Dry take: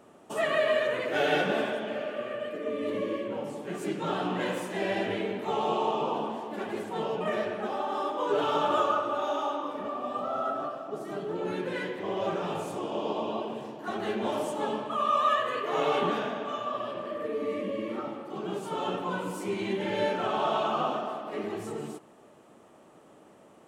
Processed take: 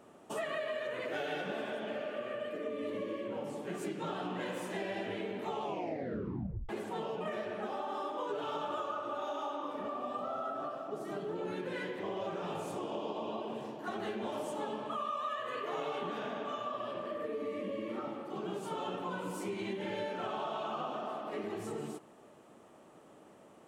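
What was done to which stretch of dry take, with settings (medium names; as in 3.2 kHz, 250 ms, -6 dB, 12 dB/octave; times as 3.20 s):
5.62 s: tape stop 1.07 s
whole clip: compression, threshold -32 dBFS; trim -2.5 dB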